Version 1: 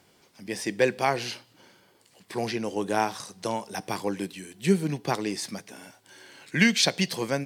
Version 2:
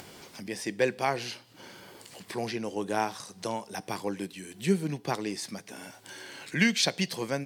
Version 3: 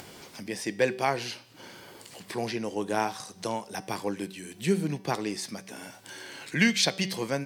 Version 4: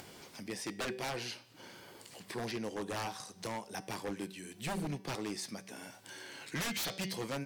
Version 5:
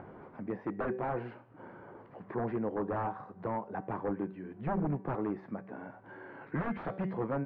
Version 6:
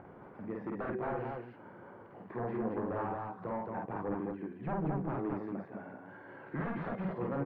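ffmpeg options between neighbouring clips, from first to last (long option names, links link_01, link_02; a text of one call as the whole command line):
ffmpeg -i in.wav -af "acompressor=mode=upward:threshold=-31dB:ratio=2.5,volume=-3.5dB" out.wav
ffmpeg -i in.wav -af "bandreject=frequency=191.3:width_type=h:width=4,bandreject=frequency=382.6:width_type=h:width=4,bandreject=frequency=573.9:width_type=h:width=4,bandreject=frequency=765.2:width_type=h:width=4,bandreject=frequency=956.5:width_type=h:width=4,bandreject=frequency=1147.8:width_type=h:width=4,bandreject=frequency=1339.1:width_type=h:width=4,bandreject=frequency=1530.4:width_type=h:width=4,bandreject=frequency=1721.7:width_type=h:width=4,bandreject=frequency=1913:width_type=h:width=4,bandreject=frequency=2104.3:width_type=h:width=4,bandreject=frequency=2295.6:width_type=h:width=4,bandreject=frequency=2486.9:width_type=h:width=4,bandreject=frequency=2678.2:width_type=h:width=4,bandreject=frequency=2869.5:width_type=h:width=4,bandreject=frequency=3060.8:width_type=h:width=4,bandreject=frequency=3252.1:width_type=h:width=4,bandreject=frequency=3443.4:width_type=h:width=4,bandreject=frequency=3634.7:width_type=h:width=4,bandreject=frequency=3826:width_type=h:width=4,bandreject=frequency=4017.3:width_type=h:width=4,bandreject=frequency=4208.6:width_type=h:width=4,bandreject=frequency=4399.9:width_type=h:width=4,bandreject=frequency=4591.2:width_type=h:width=4,bandreject=frequency=4782.5:width_type=h:width=4,bandreject=frequency=4973.8:width_type=h:width=4,bandreject=frequency=5165.1:width_type=h:width=4,bandreject=frequency=5356.4:width_type=h:width=4,bandreject=frequency=5547.7:width_type=h:width=4,bandreject=frequency=5739:width_type=h:width=4,bandreject=frequency=5930.3:width_type=h:width=4,bandreject=frequency=6121.6:width_type=h:width=4,bandreject=frequency=6312.9:width_type=h:width=4,volume=1.5dB" out.wav
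ffmpeg -i in.wav -af "aeval=exprs='0.0531*(abs(mod(val(0)/0.0531+3,4)-2)-1)':channel_layout=same,volume=-5.5dB" out.wav
ffmpeg -i in.wav -af "lowpass=frequency=1400:width=0.5412,lowpass=frequency=1400:width=1.3066,volume=5.5dB" out.wav
ffmpeg -i in.wav -af "aecho=1:1:49.56|221.6:0.794|0.708,volume=-4.5dB" out.wav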